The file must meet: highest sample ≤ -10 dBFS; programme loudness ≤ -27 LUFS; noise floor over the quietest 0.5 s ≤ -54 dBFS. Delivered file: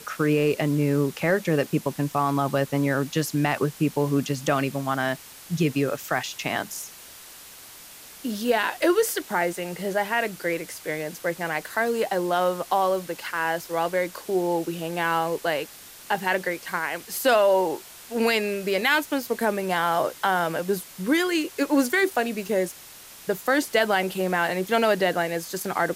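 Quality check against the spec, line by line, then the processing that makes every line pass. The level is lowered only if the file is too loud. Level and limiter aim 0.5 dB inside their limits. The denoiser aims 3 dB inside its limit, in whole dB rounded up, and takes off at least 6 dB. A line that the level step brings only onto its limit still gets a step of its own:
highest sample -8.5 dBFS: fail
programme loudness -25.0 LUFS: fail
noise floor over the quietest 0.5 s -45 dBFS: fail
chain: noise reduction 10 dB, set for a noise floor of -45 dBFS; trim -2.5 dB

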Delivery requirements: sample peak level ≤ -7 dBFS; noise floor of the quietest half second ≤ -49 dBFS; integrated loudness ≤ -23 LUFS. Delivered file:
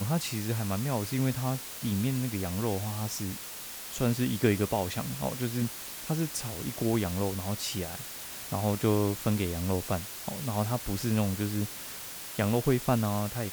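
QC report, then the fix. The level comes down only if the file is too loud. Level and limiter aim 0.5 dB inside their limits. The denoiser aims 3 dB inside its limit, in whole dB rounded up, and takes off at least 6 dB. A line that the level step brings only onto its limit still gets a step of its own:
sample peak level -11.5 dBFS: pass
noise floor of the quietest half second -41 dBFS: fail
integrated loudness -31.0 LUFS: pass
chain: noise reduction 11 dB, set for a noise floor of -41 dBFS

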